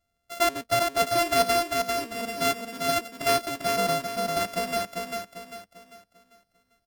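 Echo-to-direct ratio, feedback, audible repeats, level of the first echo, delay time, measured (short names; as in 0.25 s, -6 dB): -3.5 dB, 38%, 4, -4.0 dB, 0.396 s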